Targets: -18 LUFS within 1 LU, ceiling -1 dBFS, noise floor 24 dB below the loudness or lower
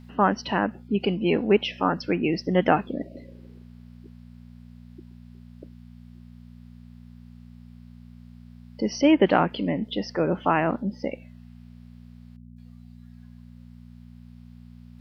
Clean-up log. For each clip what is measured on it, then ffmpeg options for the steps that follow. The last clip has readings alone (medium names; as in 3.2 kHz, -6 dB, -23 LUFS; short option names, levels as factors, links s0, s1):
hum 60 Hz; highest harmonic 240 Hz; hum level -43 dBFS; loudness -24.0 LUFS; peak level -4.0 dBFS; loudness target -18.0 LUFS
-> -af "bandreject=f=60:t=h:w=4,bandreject=f=120:t=h:w=4,bandreject=f=180:t=h:w=4,bandreject=f=240:t=h:w=4"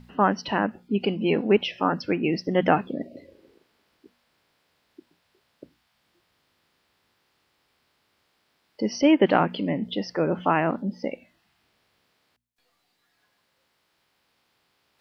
hum not found; loudness -24.5 LUFS; peak level -4.5 dBFS; loudness target -18.0 LUFS
-> -af "volume=2.11,alimiter=limit=0.891:level=0:latency=1"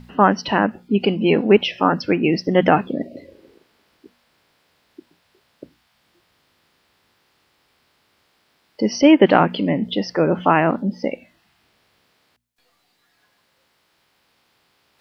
loudness -18.0 LUFS; peak level -1.0 dBFS; noise floor -65 dBFS